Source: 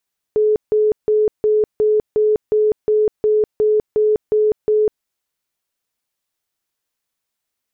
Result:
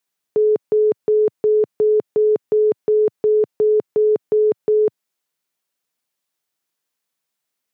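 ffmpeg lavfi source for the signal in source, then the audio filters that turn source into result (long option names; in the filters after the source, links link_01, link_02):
-f lavfi -i "aevalsrc='0.266*sin(2*PI*427*mod(t,0.36))*lt(mod(t,0.36),85/427)':duration=4.68:sample_rate=44100"
-af "highpass=frequency=120:width=0.5412,highpass=frequency=120:width=1.3066"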